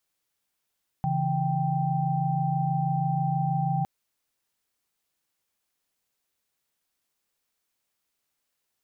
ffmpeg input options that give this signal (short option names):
-f lavfi -i "aevalsrc='0.0422*(sin(2*PI*138.59*t)+sin(2*PI*164.81*t)+sin(2*PI*783.99*t))':d=2.81:s=44100"